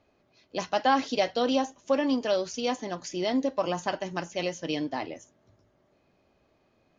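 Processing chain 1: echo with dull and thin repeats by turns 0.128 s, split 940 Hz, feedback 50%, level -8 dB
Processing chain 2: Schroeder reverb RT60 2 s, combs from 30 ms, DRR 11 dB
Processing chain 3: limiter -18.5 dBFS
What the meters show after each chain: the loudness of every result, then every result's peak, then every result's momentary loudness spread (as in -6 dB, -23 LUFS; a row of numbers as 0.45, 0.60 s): -28.5, -28.5, -30.5 LUFS; -12.0, -11.0, -18.5 dBFS; 9, 9, 7 LU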